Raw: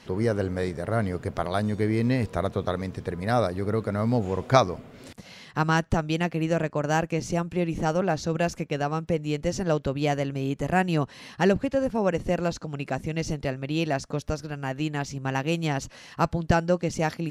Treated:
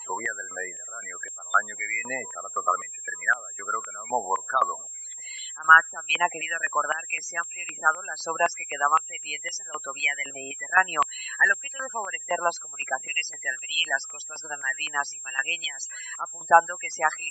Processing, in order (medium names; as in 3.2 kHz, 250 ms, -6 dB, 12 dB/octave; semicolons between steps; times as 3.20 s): whistle 7.5 kHz -41 dBFS; loudest bins only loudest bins 32; step-sequenced high-pass 3.9 Hz 980–3200 Hz; trim +5 dB